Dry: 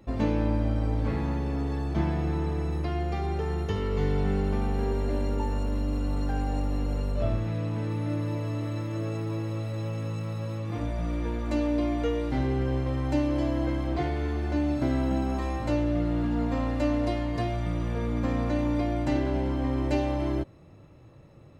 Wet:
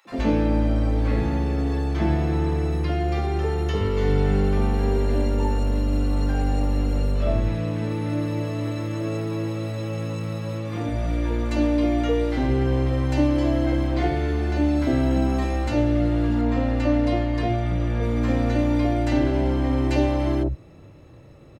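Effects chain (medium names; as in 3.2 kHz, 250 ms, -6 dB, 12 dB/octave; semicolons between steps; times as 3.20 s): 16.41–18.03 s: treble shelf 5.7 kHz -9 dB; three bands offset in time highs, mids, lows 50/110 ms, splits 150/970 Hz; trim +6.5 dB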